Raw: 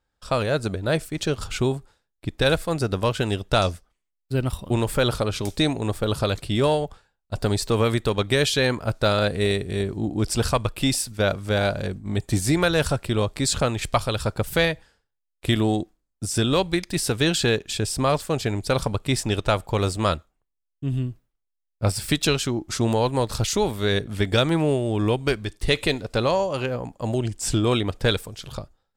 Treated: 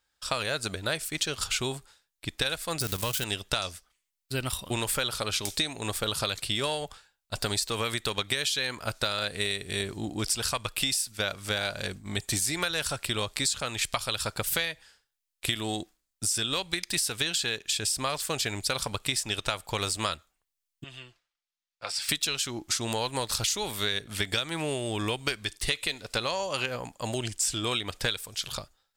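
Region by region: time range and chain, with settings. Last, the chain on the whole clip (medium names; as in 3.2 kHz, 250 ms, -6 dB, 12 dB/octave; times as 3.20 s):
2.80–3.24 s: zero-crossing glitches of -22.5 dBFS + bass shelf 220 Hz +9.5 dB + level held to a coarse grid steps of 10 dB
20.84–22.09 s: three-band isolator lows -18 dB, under 500 Hz, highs -20 dB, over 6.3 kHz + comb 5.8 ms, depth 37% + compression 1.5:1, threshold -41 dBFS
whole clip: tilt shelf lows -9 dB, about 1.1 kHz; compression 10:1, threshold -25 dBFS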